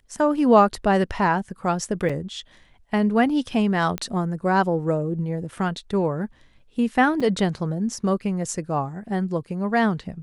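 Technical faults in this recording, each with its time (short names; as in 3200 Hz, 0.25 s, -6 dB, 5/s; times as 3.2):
2.09–2.1 gap 5.3 ms
3.98 pop -12 dBFS
7.2 gap 4.9 ms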